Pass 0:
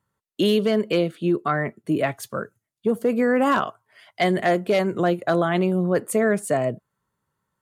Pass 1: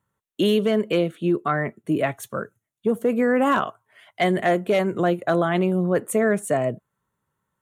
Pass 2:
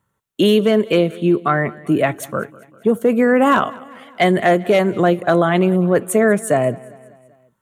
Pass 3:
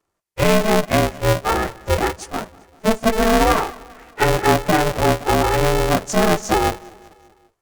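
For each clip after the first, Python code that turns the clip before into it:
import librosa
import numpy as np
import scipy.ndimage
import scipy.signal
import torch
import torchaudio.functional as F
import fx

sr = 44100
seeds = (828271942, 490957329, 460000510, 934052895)

y1 = fx.peak_eq(x, sr, hz=4800.0, db=-14.0, octaves=0.26)
y2 = fx.echo_feedback(y1, sr, ms=196, feedback_pct=54, wet_db=-21.5)
y2 = y2 * librosa.db_to_amplitude(6.0)
y3 = fx.partial_stretch(y2, sr, pct=90)
y3 = fx.notch_comb(y3, sr, f0_hz=1300.0)
y3 = y3 * np.sign(np.sin(2.0 * np.pi * 220.0 * np.arange(len(y3)) / sr))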